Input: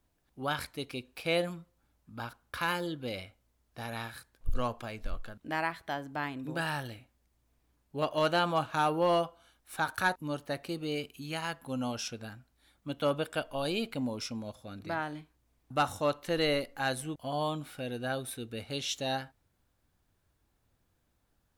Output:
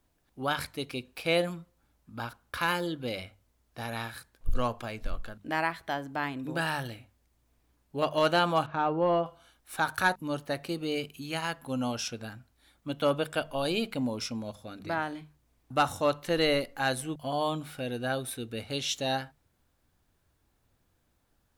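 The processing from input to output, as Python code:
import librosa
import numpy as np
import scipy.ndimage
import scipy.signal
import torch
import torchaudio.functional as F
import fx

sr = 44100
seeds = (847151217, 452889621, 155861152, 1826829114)

y = fx.spacing_loss(x, sr, db_at_10k=34, at=(8.66, 9.26))
y = fx.hum_notches(y, sr, base_hz=50, count=4)
y = y * librosa.db_to_amplitude(3.0)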